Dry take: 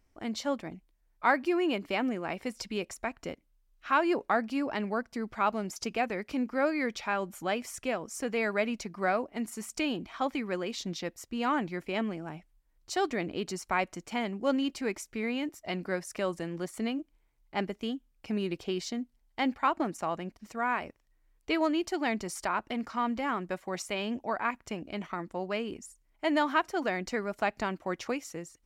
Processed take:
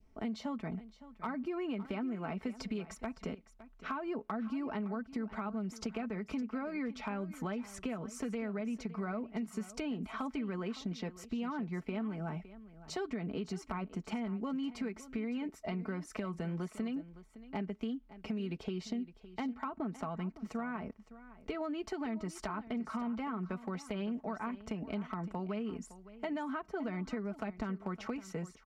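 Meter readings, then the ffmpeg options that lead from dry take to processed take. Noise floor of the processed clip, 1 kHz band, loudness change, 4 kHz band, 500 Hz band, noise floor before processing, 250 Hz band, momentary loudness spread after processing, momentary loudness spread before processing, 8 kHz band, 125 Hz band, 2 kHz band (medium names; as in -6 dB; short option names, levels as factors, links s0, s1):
-61 dBFS, -11.0 dB, -7.0 dB, -11.5 dB, -9.0 dB, -71 dBFS, -3.5 dB, 5 LU, 9 LU, -10.5 dB, +1.0 dB, -12.5 dB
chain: -filter_complex "[0:a]bandreject=f=1700:w=14,adynamicequalizer=threshold=0.00708:dfrequency=1300:dqfactor=1.2:tfrequency=1300:tqfactor=1.2:attack=5:release=100:ratio=0.375:range=3:mode=boostabove:tftype=bell,lowpass=f=2400:p=1,equalizer=f=140:w=0.44:g=5.5,aecho=1:1:4.6:0.61,acrossover=split=300|1300[s0][s1][s2];[s0]acompressor=threshold=0.0316:ratio=4[s3];[s1]acompressor=threshold=0.0141:ratio=4[s4];[s2]acompressor=threshold=0.00631:ratio=4[s5];[s3][s4][s5]amix=inputs=3:normalize=0,asplit=2[s6][s7];[s7]alimiter=level_in=1.88:limit=0.0631:level=0:latency=1:release=182,volume=0.531,volume=0.841[s8];[s6][s8]amix=inputs=2:normalize=0,acompressor=threshold=0.0282:ratio=4,volume=15,asoftclip=hard,volume=0.0668,asplit=2[s9][s10];[s10]aecho=0:1:562:0.158[s11];[s9][s11]amix=inputs=2:normalize=0,volume=0.631"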